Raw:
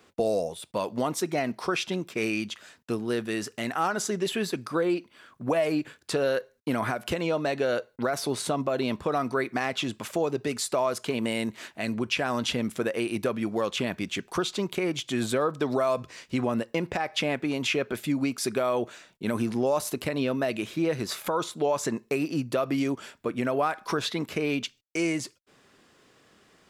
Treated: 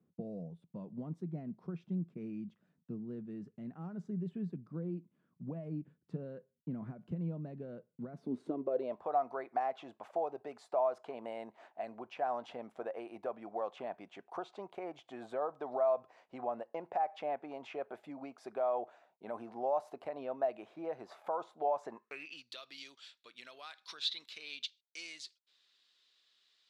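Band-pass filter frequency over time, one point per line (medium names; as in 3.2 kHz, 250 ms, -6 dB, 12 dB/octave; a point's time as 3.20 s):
band-pass filter, Q 4.5
8.10 s 170 Hz
9.01 s 740 Hz
21.90 s 740 Hz
22.43 s 3.9 kHz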